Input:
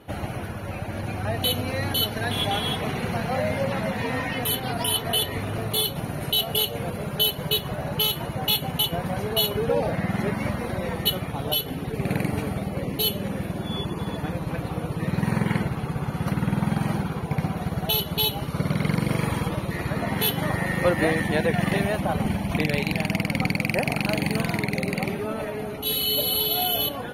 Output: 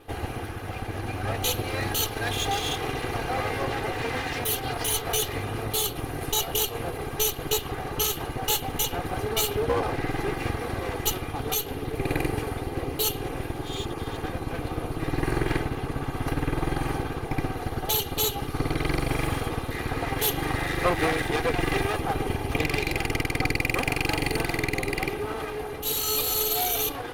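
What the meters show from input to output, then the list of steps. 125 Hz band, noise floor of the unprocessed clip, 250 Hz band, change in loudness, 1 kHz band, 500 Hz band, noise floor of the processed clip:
-4.5 dB, -34 dBFS, -5.0 dB, -2.5 dB, +0.5 dB, -1.5 dB, -35 dBFS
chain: minimum comb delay 2.5 ms

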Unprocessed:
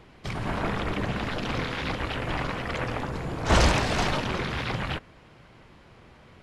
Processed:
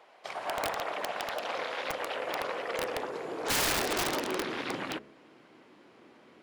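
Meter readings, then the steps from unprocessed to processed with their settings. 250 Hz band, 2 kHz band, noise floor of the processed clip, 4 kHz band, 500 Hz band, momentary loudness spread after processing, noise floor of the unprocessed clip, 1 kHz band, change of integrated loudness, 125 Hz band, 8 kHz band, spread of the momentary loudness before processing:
-9.0 dB, -4.5 dB, -58 dBFS, -3.0 dB, -2.5 dB, 9 LU, -53 dBFS, -4.0 dB, -4.5 dB, -20.5 dB, +2.0 dB, 10 LU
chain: high-pass sweep 640 Hz -> 290 Hz, 1.23–4.96; wrapped overs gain 17.5 dB; de-hum 70 Hz, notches 9; gain -5 dB

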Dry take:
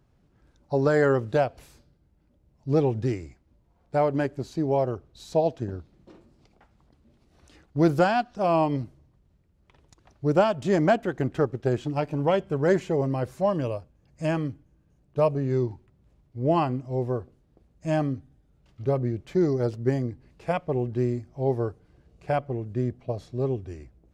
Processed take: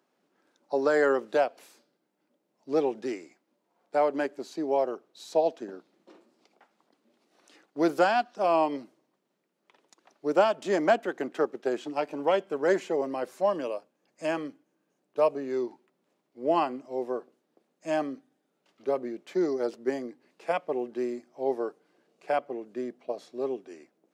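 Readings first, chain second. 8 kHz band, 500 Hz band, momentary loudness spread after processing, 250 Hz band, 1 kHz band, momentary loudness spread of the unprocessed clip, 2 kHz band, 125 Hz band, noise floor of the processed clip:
n/a, -1.5 dB, 13 LU, -5.5 dB, -0.5 dB, 12 LU, 0.0 dB, -23.0 dB, -77 dBFS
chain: Bessel high-pass 370 Hz, order 8

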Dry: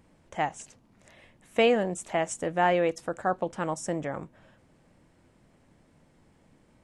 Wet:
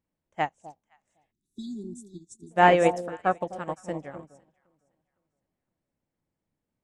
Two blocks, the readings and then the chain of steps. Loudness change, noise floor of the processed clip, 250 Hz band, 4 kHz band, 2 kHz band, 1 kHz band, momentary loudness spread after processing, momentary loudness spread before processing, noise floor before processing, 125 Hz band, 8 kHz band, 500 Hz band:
+2.5 dB, under -85 dBFS, 0.0 dB, -3.0 dB, +2.0 dB, +4.0 dB, 24 LU, 11 LU, -63 dBFS, +1.0 dB, -8.0 dB, 0.0 dB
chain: echo with dull and thin repeats by turns 0.256 s, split 850 Hz, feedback 54%, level -5 dB; spectral delete 1.32–2.51, 410–3400 Hz; upward expander 2.5:1, over -42 dBFS; gain +7.5 dB

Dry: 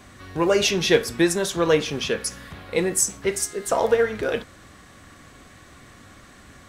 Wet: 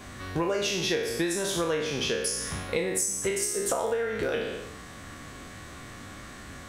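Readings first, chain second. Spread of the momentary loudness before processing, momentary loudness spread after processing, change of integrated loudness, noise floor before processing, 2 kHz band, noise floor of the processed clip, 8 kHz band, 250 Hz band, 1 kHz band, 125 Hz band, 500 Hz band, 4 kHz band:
9 LU, 16 LU, -6.0 dB, -49 dBFS, -5.0 dB, -44 dBFS, -3.5 dB, -6.5 dB, -6.0 dB, -4.5 dB, -7.0 dB, -4.5 dB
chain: spectral trails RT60 0.73 s; compressor 10:1, threshold -27 dBFS, peak gain reduction 17.5 dB; gain +2 dB

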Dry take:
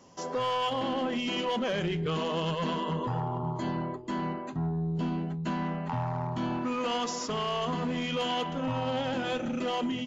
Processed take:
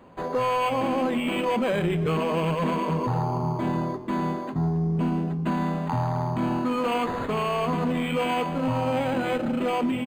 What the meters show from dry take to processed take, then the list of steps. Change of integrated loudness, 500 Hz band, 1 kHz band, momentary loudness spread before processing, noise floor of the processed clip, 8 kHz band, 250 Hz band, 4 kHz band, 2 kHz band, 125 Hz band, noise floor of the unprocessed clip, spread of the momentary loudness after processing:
+5.5 dB, +6.0 dB, +5.0 dB, 3 LU, -32 dBFS, n/a, +6.0 dB, -2.5 dB, +5.0 dB, +6.0 dB, -38 dBFS, 3 LU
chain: frequency-shifting echo 0.273 s, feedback 58%, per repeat +48 Hz, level -20.5 dB; decimation joined by straight lines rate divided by 8×; gain +6 dB

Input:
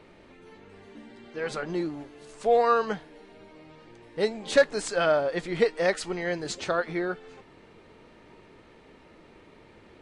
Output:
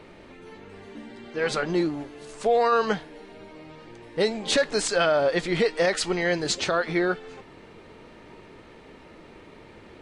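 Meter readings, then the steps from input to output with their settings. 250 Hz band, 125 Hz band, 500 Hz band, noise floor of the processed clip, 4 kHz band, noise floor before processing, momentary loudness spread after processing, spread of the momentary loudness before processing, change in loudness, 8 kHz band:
+5.0 dB, +5.0 dB, +1.5 dB, -49 dBFS, +7.5 dB, -54 dBFS, 16 LU, 13 LU, +2.5 dB, +7.0 dB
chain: dynamic EQ 4100 Hz, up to +4 dB, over -44 dBFS, Q 0.71; limiter -18.5 dBFS, peak gain reduction 10 dB; gain +5.5 dB

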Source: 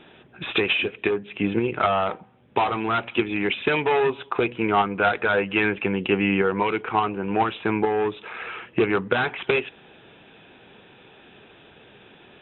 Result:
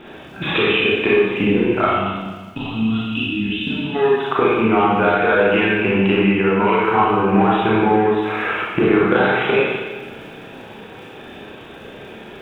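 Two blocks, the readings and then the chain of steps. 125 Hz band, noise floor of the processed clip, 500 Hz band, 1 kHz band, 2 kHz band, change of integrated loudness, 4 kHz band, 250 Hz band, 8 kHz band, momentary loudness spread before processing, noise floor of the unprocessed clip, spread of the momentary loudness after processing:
+8.5 dB, -38 dBFS, +7.0 dB, +5.5 dB, +5.5 dB, +6.5 dB, +5.0 dB, +8.5 dB, n/a, 6 LU, -51 dBFS, 21 LU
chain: crackle 93/s -44 dBFS; compressor, threshold -26 dBFS, peak gain reduction 10.5 dB; reverb removal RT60 0.77 s; high shelf 2800 Hz -9 dB; spectral gain 1.86–3.95, 310–2500 Hz -20 dB; Schroeder reverb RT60 1.4 s, combs from 28 ms, DRR -7 dB; gain +9 dB

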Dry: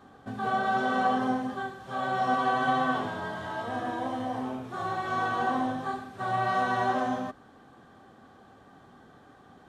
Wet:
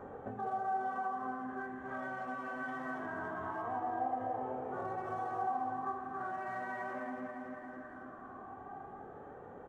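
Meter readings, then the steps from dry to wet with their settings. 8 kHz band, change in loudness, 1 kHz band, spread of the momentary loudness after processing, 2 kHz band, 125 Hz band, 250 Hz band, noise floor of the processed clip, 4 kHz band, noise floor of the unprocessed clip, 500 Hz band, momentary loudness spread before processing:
n/a, -10.5 dB, -9.0 dB, 13 LU, -10.5 dB, -13.0 dB, -11.5 dB, -50 dBFS, under -20 dB, -55 dBFS, -8.5 dB, 9 LU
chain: Wiener smoothing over 9 samples; flange 0.21 Hz, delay 2.1 ms, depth 1.3 ms, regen +39%; bell 3500 Hz -12 dB 0.89 oct; vocal rider within 5 dB 0.5 s; high shelf 6900 Hz -4 dB; on a send: feedback echo 0.279 s, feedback 43%, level -7 dB; on the sum: compressor 2.5:1, threshold -53 dBFS, peak gain reduction 16.5 dB; notches 60/120 Hz; LFO bell 0.21 Hz 570–2200 Hz +8 dB; gain +6 dB

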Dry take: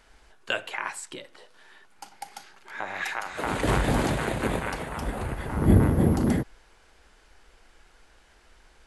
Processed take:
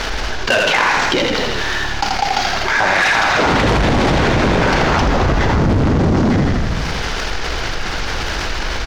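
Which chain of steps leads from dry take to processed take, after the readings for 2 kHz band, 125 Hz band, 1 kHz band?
+17.5 dB, +9.5 dB, +16.5 dB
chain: CVSD 32 kbps; soft clip -22.5 dBFS, distortion -8 dB; sample leveller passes 1; frequency-shifting echo 82 ms, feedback 60%, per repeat -36 Hz, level -6.5 dB; maximiser +22 dB; fast leveller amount 70%; gain -8 dB

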